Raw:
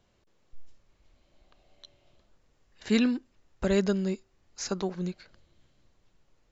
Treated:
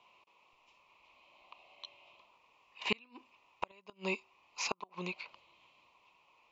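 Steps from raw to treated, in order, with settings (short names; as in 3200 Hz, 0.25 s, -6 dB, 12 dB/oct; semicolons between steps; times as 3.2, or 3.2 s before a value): double band-pass 1600 Hz, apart 1.3 oct; flipped gate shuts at -34 dBFS, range -36 dB; gain +18 dB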